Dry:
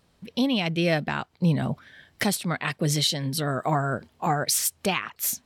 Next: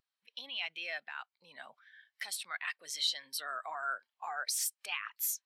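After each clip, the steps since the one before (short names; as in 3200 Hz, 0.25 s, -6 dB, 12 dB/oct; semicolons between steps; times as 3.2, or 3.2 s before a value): limiter -21.5 dBFS, peak gain reduction 9.5 dB; HPF 1300 Hz 12 dB/oct; spectral expander 1.5:1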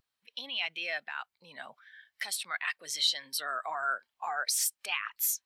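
low shelf 320 Hz +6 dB; gain +4.5 dB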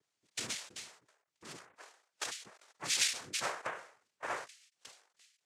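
rotary speaker horn 1 Hz; noise vocoder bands 3; ending taper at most 110 dB/s; gain +7.5 dB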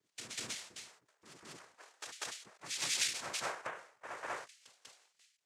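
reverse echo 0.194 s -5 dB; gain -3 dB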